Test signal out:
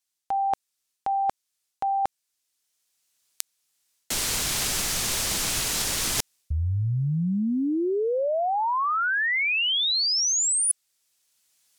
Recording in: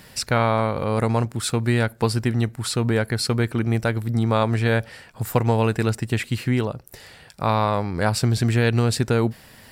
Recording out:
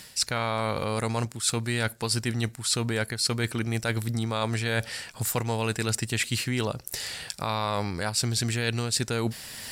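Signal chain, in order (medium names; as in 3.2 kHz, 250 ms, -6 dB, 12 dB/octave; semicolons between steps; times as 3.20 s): recorder AGC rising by 8.3 dB/s; peaking EQ 7.2 kHz +14.5 dB 2.9 oct; reverse; compression 12:1, threshold -20 dBFS; reverse; trim -3 dB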